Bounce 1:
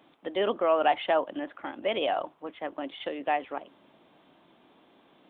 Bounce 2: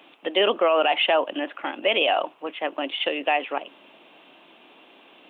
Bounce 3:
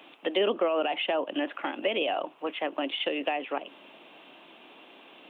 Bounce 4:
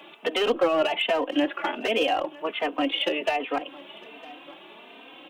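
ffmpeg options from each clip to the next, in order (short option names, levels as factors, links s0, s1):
-af "highpass=290,equalizer=f=2700:w=3.3:g=12,alimiter=limit=0.126:level=0:latency=1:release=46,volume=2.37"
-filter_complex "[0:a]acrossover=split=420[s0][s1];[s1]acompressor=threshold=0.0355:ratio=5[s2];[s0][s2]amix=inputs=2:normalize=0"
-filter_complex "[0:a]asoftclip=type=hard:threshold=0.075,aecho=1:1:956:0.0841,asplit=2[s0][s1];[s1]adelay=3.1,afreqshift=1.3[s2];[s0][s2]amix=inputs=2:normalize=1,volume=2.51"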